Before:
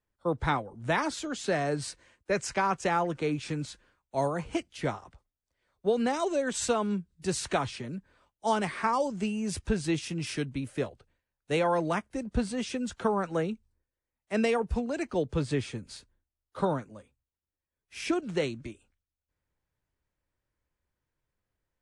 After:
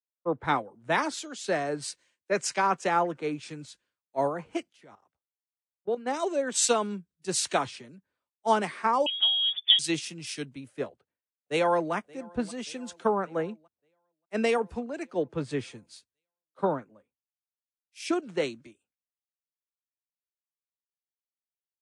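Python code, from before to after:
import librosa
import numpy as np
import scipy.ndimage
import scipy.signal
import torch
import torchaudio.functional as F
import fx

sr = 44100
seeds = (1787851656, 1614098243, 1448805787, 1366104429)

y = fx.level_steps(x, sr, step_db=13, at=(4.69, 6.06), fade=0.02)
y = fx.freq_invert(y, sr, carrier_hz=3500, at=(9.06, 9.79))
y = fx.echo_throw(y, sr, start_s=10.88, length_s=1.05, ms=580, feedback_pct=70, wet_db=-17.5)
y = scipy.signal.sosfilt(scipy.signal.butter(2, 210.0, 'highpass', fs=sr, output='sos'), y)
y = fx.band_widen(y, sr, depth_pct=100)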